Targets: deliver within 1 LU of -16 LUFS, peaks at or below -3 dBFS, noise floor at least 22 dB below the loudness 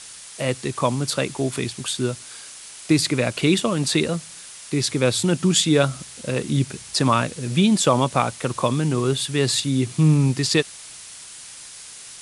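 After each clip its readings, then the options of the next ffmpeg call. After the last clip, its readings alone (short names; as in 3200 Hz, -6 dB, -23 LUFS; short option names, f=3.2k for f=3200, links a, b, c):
noise floor -41 dBFS; noise floor target -44 dBFS; loudness -21.5 LUFS; peak -4.0 dBFS; loudness target -16.0 LUFS
-> -af "afftdn=nr=6:nf=-41"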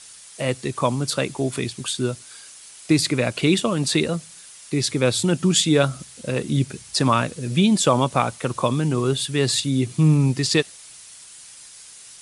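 noise floor -44 dBFS; loudness -21.5 LUFS; peak -4.0 dBFS; loudness target -16.0 LUFS
-> -af "volume=5.5dB,alimiter=limit=-3dB:level=0:latency=1"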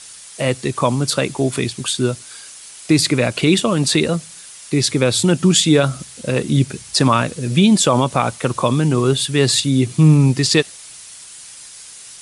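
loudness -16.5 LUFS; peak -3.0 dBFS; noise floor -39 dBFS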